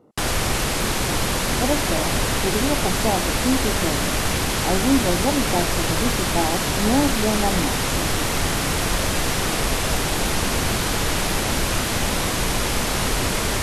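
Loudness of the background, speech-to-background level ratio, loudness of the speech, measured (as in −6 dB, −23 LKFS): −21.5 LKFS, −4.0 dB, −25.5 LKFS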